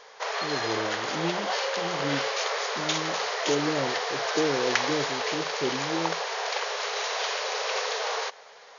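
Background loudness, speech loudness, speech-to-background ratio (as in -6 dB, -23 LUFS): -28.5 LUFS, -33.5 LUFS, -5.0 dB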